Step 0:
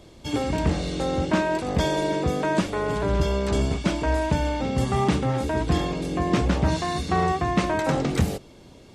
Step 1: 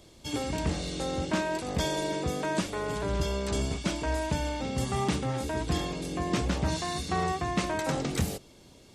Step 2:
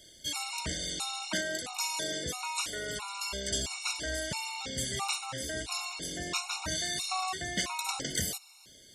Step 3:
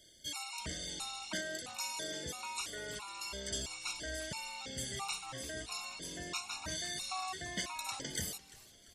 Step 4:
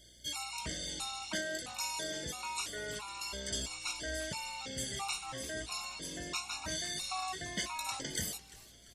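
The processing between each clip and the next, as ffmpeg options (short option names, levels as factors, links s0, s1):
-af "highshelf=f=3700:g=9.5,volume=0.447"
-af "tiltshelf=f=1200:g=-9.5,afftfilt=real='re*gt(sin(2*PI*1.5*pts/sr)*(1-2*mod(floor(b*sr/1024/730),2)),0)':imag='im*gt(sin(2*PI*1.5*pts/sr)*(1-2*mod(floor(b*sr/1024/730),2)),0)':win_size=1024:overlap=0.75"
-filter_complex "[0:a]asplit=5[s0][s1][s2][s3][s4];[s1]adelay=344,afreqshift=-82,volume=0.106[s5];[s2]adelay=688,afreqshift=-164,volume=0.049[s6];[s3]adelay=1032,afreqshift=-246,volume=0.0224[s7];[s4]adelay=1376,afreqshift=-328,volume=0.0104[s8];[s0][s5][s6][s7][s8]amix=inputs=5:normalize=0,volume=0.473"
-filter_complex "[0:a]aeval=exprs='val(0)+0.000447*(sin(2*PI*60*n/s)+sin(2*PI*2*60*n/s)/2+sin(2*PI*3*60*n/s)/3+sin(2*PI*4*60*n/s)/4+sin(2*PI*5*60*n/s)/5)':c=same,asplit=2[s0][s1];[s1]adelay=19,volume=0.266[s2];[s0][s2]amix=inputs=2:normalize=0,volume=1.19"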